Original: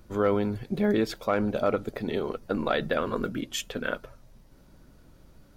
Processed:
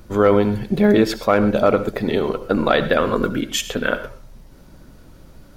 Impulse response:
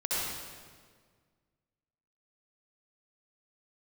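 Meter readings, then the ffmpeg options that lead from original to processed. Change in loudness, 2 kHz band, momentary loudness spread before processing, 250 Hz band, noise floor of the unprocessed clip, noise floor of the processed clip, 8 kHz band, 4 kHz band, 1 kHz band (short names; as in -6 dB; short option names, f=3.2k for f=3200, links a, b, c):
+10.0 dB, +10.0 dB, 7 LU, +10.0 dB, -56 dBFS, -46 dBFS, +10.0 dB, +10.0 dB, +10.0 dB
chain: -filter_complex "[0:a]asplit=2[a][b];[1:a]atrim=start_sample=2205,atrim=end_sample=6174[c];[b][c]afir=irnorm=-1:irlink=0,volume=-15.5dB[d];[a][d]amix=inputs=2:normalize=0,volume=8.5dB"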